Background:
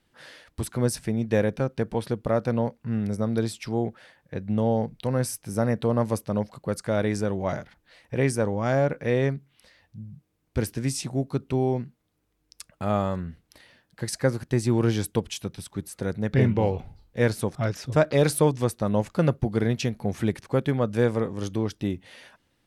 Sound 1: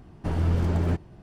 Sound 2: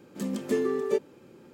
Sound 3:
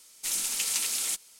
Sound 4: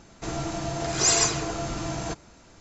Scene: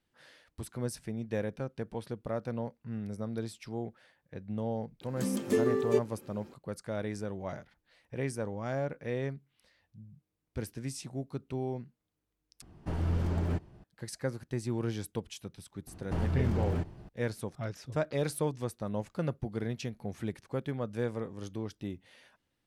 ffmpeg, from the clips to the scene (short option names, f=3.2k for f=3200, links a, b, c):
-filter_complex "[1:a]asplit=2[a][b];[0:a]volume=-11dB[c];[b]acompressor=threshold=-25dB:ratio=6:attack=3.2:release=140:knee=1:detection=peak[d];[c]asplit=2[e][f];[e]atrim=end=12.624[g];[a]atrim=end=1.22,asetpts=PTS-STARTPTS,volume=-6.5dB[h];[f]atrim=start=13.836[i];[2:a]atrim=end=1.53,asetpts=PTS-STARTPTS,volume=-1dB,afade=t=in:d=0.004:c=hsin,afade=t=out:st=1.526:d=0.004:c=hsin,adelay=220941S[j];[d]atrim=end=1.22,asetpts=PTS-STARTPTS,volume=-1.5dB,afade=t=in:d=0.004:c=hsin,afade=t=out:st=1.216:d=0.004:c=hsin,adelay=15870[k];[g][h]acrossfade=d=0.004:c1=hsin:c2=hsin[l];[l][i]acrossfade=d=0.004:c1=hsin:c2=hsin[m];[m][j][k]amix=inputs=3:normalize=0"